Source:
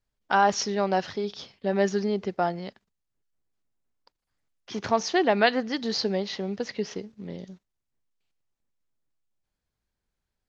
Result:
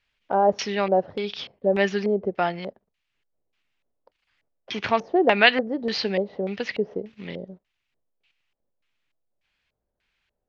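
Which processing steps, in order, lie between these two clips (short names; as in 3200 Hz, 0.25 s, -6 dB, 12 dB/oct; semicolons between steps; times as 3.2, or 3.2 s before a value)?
high shelf 2600 Hz +10.5 dB; LFO low-pass square 1.7 Hz 570–2600 Hz; mismatched tape noise reduction encoder only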